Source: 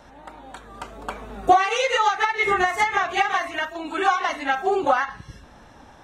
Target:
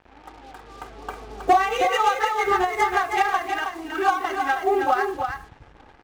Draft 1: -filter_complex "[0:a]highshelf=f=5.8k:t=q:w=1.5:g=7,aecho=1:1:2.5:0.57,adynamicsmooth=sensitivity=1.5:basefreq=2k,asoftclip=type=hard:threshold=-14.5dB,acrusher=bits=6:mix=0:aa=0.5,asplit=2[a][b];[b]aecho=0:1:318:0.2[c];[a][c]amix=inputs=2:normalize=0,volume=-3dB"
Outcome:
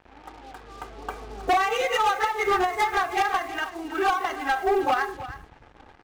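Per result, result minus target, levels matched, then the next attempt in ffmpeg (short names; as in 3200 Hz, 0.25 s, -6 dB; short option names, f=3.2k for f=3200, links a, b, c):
hard clip: distortion +12 dB; echo-to-direct -8 dB
-filter_complex "[0:a]highshelf=f=5.8k:t=q:w=1.5:g=7,aecho=1:1:2.5:0.57,adynamicsmooth=sensitivity=1.5:basefreq=2k,asoftclip=type=hard:threshold=-7.5dB,acrusher=bits=6:mix=0:aa=0.5,asplit=2[a][b];[b]aecho=0:1:318:0.2[c];[a][c]amix=inputs=2:normalize=0,volume=-3dB"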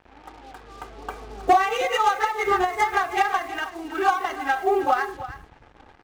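echo-to-direct -8 dB
-filter_complex "[0:a]highshelf=f=5.8k:t=q:w=1.5:g=7,aecho=1:1:2.5:0.57,adynamicsmooth=sensitivity=1.5:basefreq=2k,asoftclip=type=hard:threshold=-7.5dB,acrusher=bits=6:mix=0:aa=0.5,asplit=2[a][b];[b]aecho=0:1:318:0.501[c];[a][c]amix=inputs=2:normalize=0,volume=-3dB"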